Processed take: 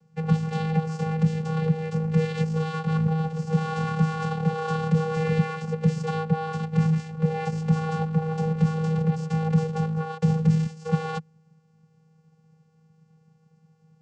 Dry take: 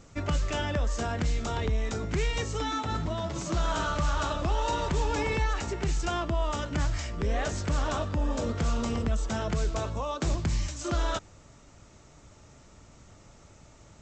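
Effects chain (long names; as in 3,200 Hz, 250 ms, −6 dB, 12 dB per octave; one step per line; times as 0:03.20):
harmonic generator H 7 −19 dB, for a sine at −19 dBFS
channel vocoder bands 8, square 159 Hz
level +8.5 dB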